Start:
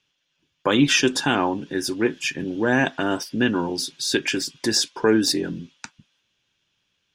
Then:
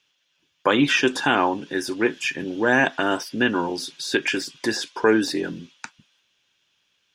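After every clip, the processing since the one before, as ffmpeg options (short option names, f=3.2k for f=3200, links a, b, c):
-filter_complex "[0:a]acrossover=split=2700[a][b];[b]acompressor=threshold=-34dB:ratio=4:attack=1:release=60[c];[a][c]amix=inputs=2:normalize=0,lowshelf=f=280:g=-11,volume=4dB"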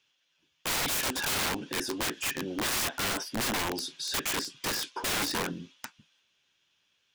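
-af "flanger=delay=7.5:depth=6.6:regen=-54:speed=0.85:shape=triangular,aeval=exprs='(mod(16.8*val(0)+1,2)-1)/16.8':c=same"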